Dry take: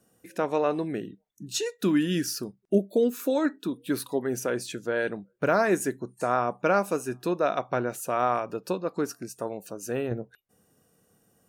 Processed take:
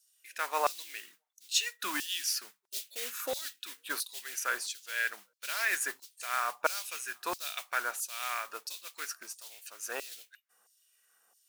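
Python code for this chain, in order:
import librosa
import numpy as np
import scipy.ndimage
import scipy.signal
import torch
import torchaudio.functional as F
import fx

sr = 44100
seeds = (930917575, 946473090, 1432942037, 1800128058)

y = fx.mod_noise(x, sr, seeds[0], snr_db=18)
y = fx.filter_lfo_highpass(y, sr, shape='saw_down', hz=1.5, low_hz=880.0, high_hz=5000.0, q=1.8)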